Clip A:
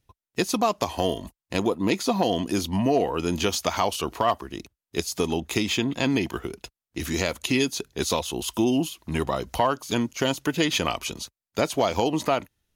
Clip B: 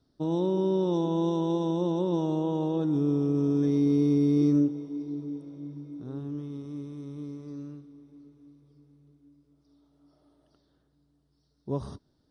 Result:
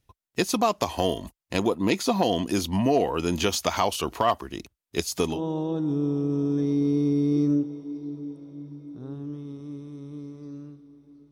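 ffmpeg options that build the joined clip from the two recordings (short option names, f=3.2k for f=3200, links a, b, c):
-filter_complex "[0:a]apad=whole_dur=11.31,atrim=end=11.31,atrim=end=5.43,asetpts=PTS-STARTPTS[a];[1:a]atrim=start=2.32:end=8.36,asetpts=PTS-STARTPTS[b];[a][b]acrossfade=d=0.16:c1=tri:c2=tri"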